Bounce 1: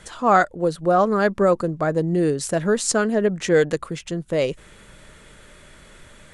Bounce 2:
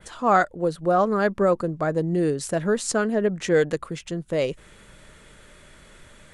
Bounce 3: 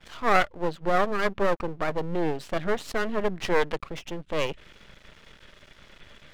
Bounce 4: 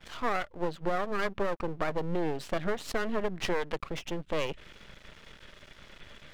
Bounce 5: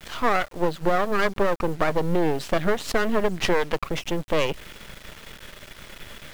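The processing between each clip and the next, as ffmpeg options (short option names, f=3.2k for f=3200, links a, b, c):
-af "adynamicequalizer=threshold=0.00708:dfrequency=6500:dqfactor=0.71:tfrequency=6500:tqfactor=0.71:attack=5:release=100:ratio=0.375:range=2:mode=cutabove:tftype=bell,volume=-2.5dB"
-af "lowpass=f=3.2k:t=q:w=2.1,aeval=exprs='max(val(0),0)':c=same"
-af "acompressor=threshold=-24dB:ratio=12"
-af "acrusher=bits=6:dc=4:mix=0:aa=0.000001,volume=8.5dB"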